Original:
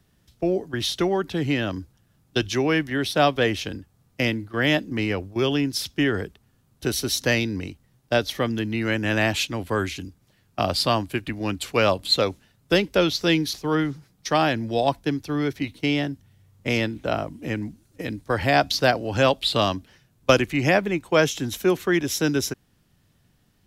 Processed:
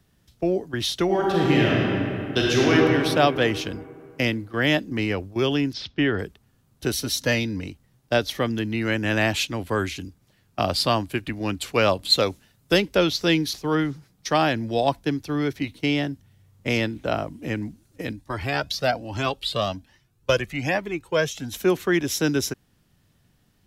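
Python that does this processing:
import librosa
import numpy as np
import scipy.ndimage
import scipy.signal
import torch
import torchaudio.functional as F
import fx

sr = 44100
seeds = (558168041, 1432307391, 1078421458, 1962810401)

y = fx.reverb_throw(x, sr, start_s=1.05, length_s=1.68, rt60_s=2.7, drr_db=-4.5)
y = fx.lowpass(y, sr, hz=4300.0, slope=24, at=(5.73, 6.19))
y = fx.notch_comb(y, sr, f0_hz=380.0, at=(6.96, 7.67))
y = fx.high_shelf(y, sr, hz=5600.0, db=5.5, at=(12.1, 12.81))
y = fx.comb_cascade(y, sr, direction='rising', hz=1.2, at=(18.11, 21.53), fade=0.02)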